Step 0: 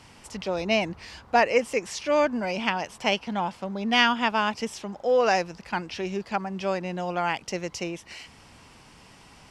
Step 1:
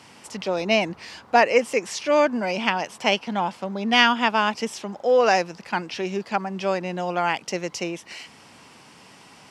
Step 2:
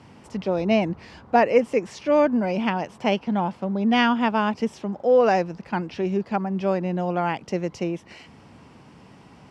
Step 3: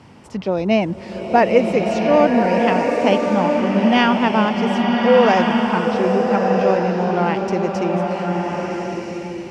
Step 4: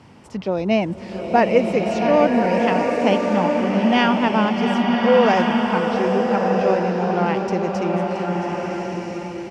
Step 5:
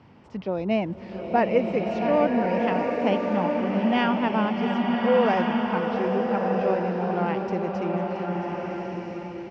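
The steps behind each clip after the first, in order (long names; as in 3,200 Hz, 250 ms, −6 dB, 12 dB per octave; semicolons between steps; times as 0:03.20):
high-pass filter 160 Hz 12 dB per octave; level +3.5 dB
spectral tilt −3.5 dB per octave; level −2.5 dB
slow-attack reverb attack 1,370 ms, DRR 0 dB; level +3.5 dB
single-tap delay 672 ms −11 dB; level −2 dB
high-frequency loss of the air 170 metres; level −5 dB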